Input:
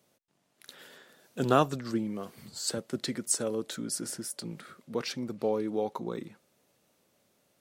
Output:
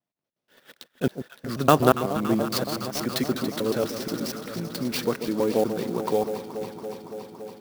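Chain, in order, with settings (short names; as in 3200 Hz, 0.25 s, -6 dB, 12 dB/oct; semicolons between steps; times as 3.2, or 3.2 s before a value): slices in reverse order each 0.12 s, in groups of 4; steep low-pass 6200 Hz 96 dB/oct; gate -51 dBFS, range -22 dB; on a send: echo with dull and thin repeats by turns 0.141 s, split 960 Hz, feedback 89%, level -10 dB; on the sum: clock jitter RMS 0.026 ms; gain +7 dB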